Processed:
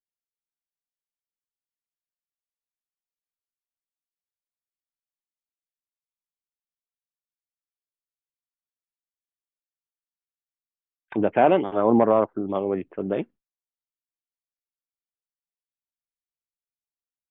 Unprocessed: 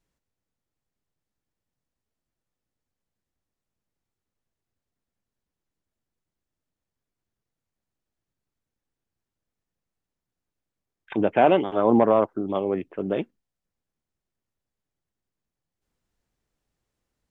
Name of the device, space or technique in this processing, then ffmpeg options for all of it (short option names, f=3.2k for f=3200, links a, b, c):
hearing-loss simulation: -af "lowpass=2.7k,agate=range=-33dB:threshold=-40dB:ratio=3:detection=peak"